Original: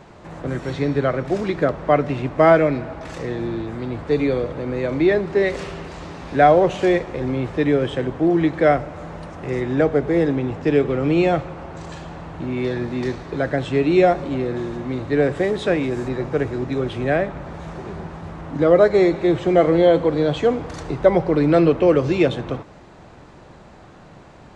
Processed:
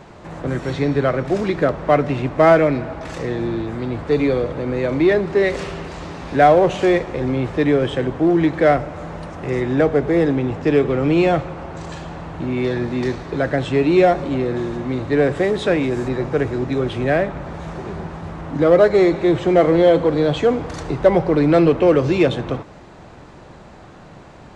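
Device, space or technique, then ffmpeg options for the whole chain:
parallel distortion: -filter_complex "[0:a]asplit=2[s0][s1];[s1]asoftclip=type=hard:threshold=0.112,volume=0.398[s2];[s0][s2]amix=inputs=2:normalize=0"

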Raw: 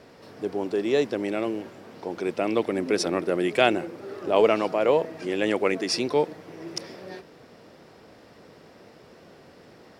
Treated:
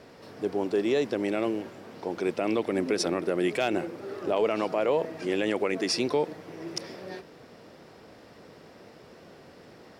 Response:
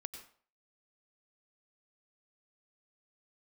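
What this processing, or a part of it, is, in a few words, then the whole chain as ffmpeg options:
clipper into limiter: -af "asoftclip=type=hard:threshold=0.376,alimiter=limit=0.158:level=0:latency=1:release=76"

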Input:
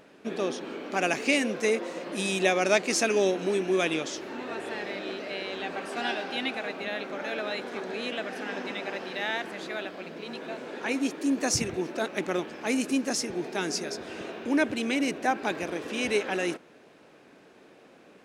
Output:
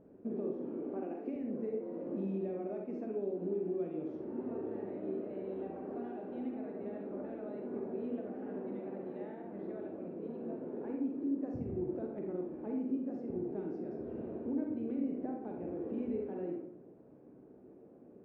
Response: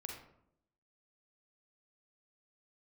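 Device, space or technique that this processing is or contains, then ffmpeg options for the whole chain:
television next door: -filter_complex "[0:a]asettb=1/sr,asplit=3[s0][s1][s2];[s0]atrim=end=0.854[s3];[s1]atrim=start=0.85:end=1.36,asetpts=PTS-STARTPTS,afade=t=in:d=0.004:c=qsin,afade=t=out:st=0.506:d=0.004:c=qsin,highpass=f=220:w=0.5412,highpass=f=220:w=1.3066[s4];[s2]atrim=start=1.356[s5];[s3][s4]acrossfade=d=0.004:c1=hsin:c2=qsin[s6];[s6][s5]acrossfade=d=0.004:c1=qsin:c2=hsin,acompressor=threshold=0.0251:ratio=5,lowpass=390[s7];[1:a]atrim=start_sample=2205[s8];[s7][s8]afir=irnorm=-1:irlink=0,volume=1.58"

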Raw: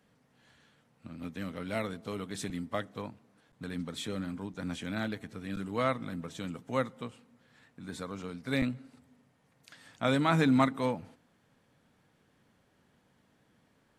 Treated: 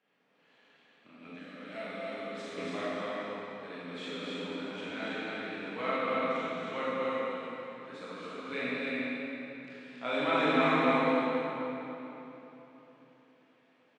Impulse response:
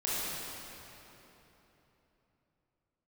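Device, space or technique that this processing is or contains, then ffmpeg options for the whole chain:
station announcement: -filter_complex "[0:a]highpass=330,lowpass=4200,equalizer=f=2500:t=o:w=0.52:g=7,aecho=1:1:215.7|277:0.282|0.708[s0];[1:a]atrim=start_sample=2205[s1];[s0][s1]afir=irnorm=-1:irlink=0,asettb=1/sr,asplit=3[s2][s3][s4];[s2]atrim=end=1.394[s5];[s3]atrim=start=1.39:end=2.58,asetpts=PTS-STARTPTS,afade=t=in:d=0.004:c=qsin,afade=t=out:st=1.186:d=0.004:c=qsin,equalizer=f=100:t=o:w=0.67:g=-9,equalizer=f=400:t=o:w=0.67:g=-8,equalizer=f=1000:t=o:w=0.67:g=-7,equalizer=f=2500:t=o:w=0.67:g=-7[s6];[s4]atrim=start=2.576[s7];[s5][s6]acrossfade=d=0.004:c1=hsin:c2=qsin[s8];[s8][s7]acrossfade=d=0.004:c1=qsin:c2=hsin,volume=0.422"

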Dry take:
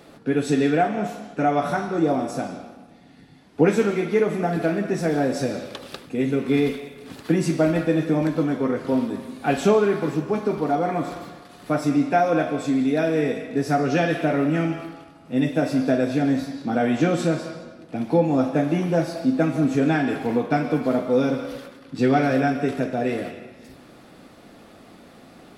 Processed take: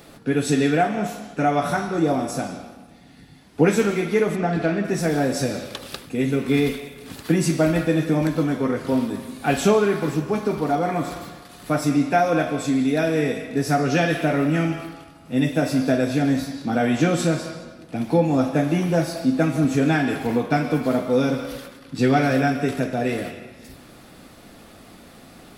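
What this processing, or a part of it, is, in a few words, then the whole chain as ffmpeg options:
smiley-face EQ: -filter_complex "[0:a]asplit=3[s0][s1][s2];[s0]afade=t=out:st=4.35:d=0.02[s3];[s1]lowpass=4700,afade=t=in:st=4.35:d=0.02,afade=t=out:st=4.83:d=0.02[s4];[s2]afade=t=in:st=4.83:d=0.02[s5];[s3][s4][s5]amix=inputs=3:normalize=0,lowshelf=f=86:g=6.5,equalizer=f=400:t=o:w=2.9:g=-3.5,highshelf=f=8000:g=8.5,volume=1.41"

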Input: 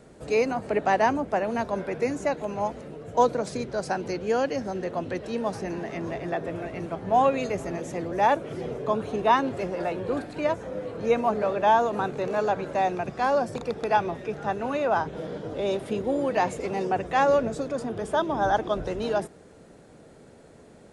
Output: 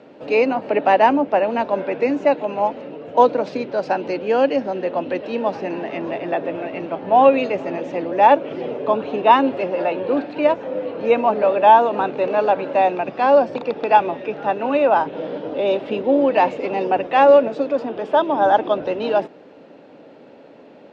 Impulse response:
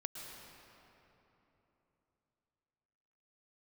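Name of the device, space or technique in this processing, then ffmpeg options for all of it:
kitchen radio: -filter_complex "[0:a]asettb=1/sr,asplit=3[s0][s1][s2];[s0]atrim=end=17.084[s3];[s1]atrim=start=17.08:end=18.4,asetpts=PTS-STARTPTS,afade=t=in:d=0.004:c=qsin,afade=t=out:st=1.316:d=0.004:c=qsin,highpass=f=180:p=1[s4];[s2]atrim=start=18.396[s5];[s3][s4]acrossfade=d=0.004:c1=hsin:c2=qsin[s6];[s6][s5]acrossfade=d=0.004:c1=qsin:c2=hsin,highpass=210,equalizer=f=280:t=q:w=4:g=8,equalizer=f=560:t=q:w=4:g=7,equalizer=f=880:t=q:w=4:g=6,equalizer=f=2700:t=q:w=4:g=8,lowpass=f=4400:w=0.5412,lowpass=f=4400:w=1.3066,volume=1.5"

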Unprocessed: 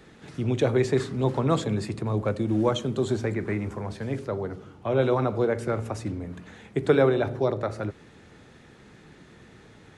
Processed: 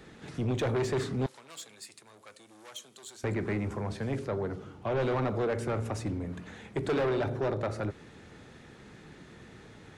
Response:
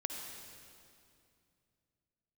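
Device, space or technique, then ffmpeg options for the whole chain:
saturation between pre-emphasis and de-emphasis: -filter_complex "[0:a]highshelf=f=4300:g=9.5,asoftclip=type=tanh:threshold=0.0562,highshelf=f=4300:g=-9.5,asettb=1/sr,asplit=3[s0][s1][s2];[s0]atrim=end=1.264[s3];[s1]atrim=start=1.26:end=3.24,asetpts=PTS-STARTPTS,afade=t=in:d=0.004:c=qsin,afade=t=out:st=1.976:d=0.004:c=qsin,aderivative[s4];[s2]atrim=start=3.236[s5];[s3][s4]acrossfade=d=0.004:c1=hsin:c2=qsin[s6];[s6][s5]acrossfade=d=0.004:c1=qsin:c2=hsin"

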